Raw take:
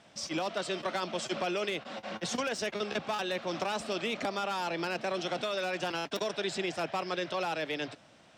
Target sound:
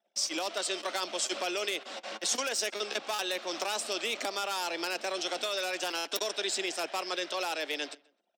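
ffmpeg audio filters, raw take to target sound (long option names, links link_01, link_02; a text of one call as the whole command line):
ffmpeg -i in.wav -filter_complex "[0:a]aemphasis=mode=production:type=cd,anlmdn=0.00398,highpass=frequency=290:width=0.5412,highpass=frequency=290:width=1.3066,highshelf=frequency=4000:gain=7,asplit=2[link_01][link_02];[link_02]adelay=129,lowpass=frequency=3400:poles=1,volume=-23dB,asplit=2[link_03][link_04];[link_04]adelay=129,lowpass=frequency=3400:poles=1,volume=0.37[link_05];[link_01][link_03][link_05]amix=inputs=3:normalize=0,volume=-1.5dB" out.wav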